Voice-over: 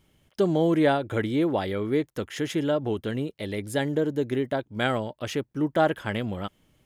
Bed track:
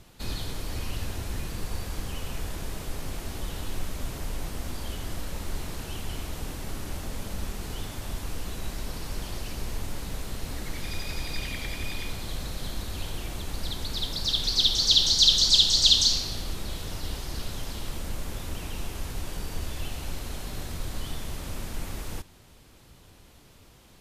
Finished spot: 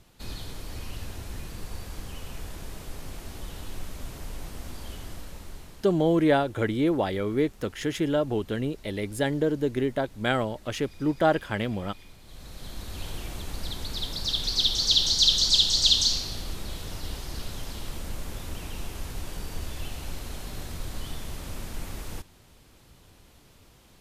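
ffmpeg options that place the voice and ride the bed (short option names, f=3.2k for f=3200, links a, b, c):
-filter_complex "[0:a]adelay=5450,volume=0dB[a];[1:a]volume=10.5dB,afade=t=out:st=4.97:d=0.97:silence=0.251189,afade=t=in:st=12.24:d=0.86:silence=0.177828[b];[a][b]amix=inputs=2:normalize=0"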